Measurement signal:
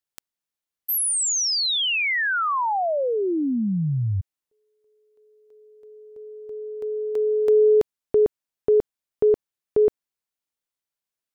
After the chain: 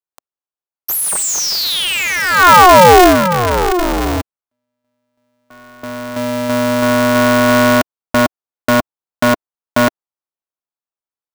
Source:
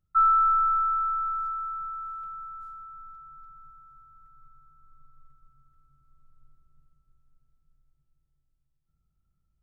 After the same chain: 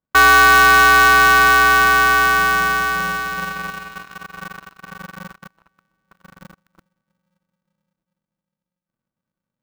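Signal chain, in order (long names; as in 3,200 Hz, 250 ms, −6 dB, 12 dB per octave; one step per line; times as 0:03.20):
leveller curve on the samples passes 5
flat-topped bell 790 Hz +13 dB
ring modulator with a square carrier 180 Hz
level −3 dB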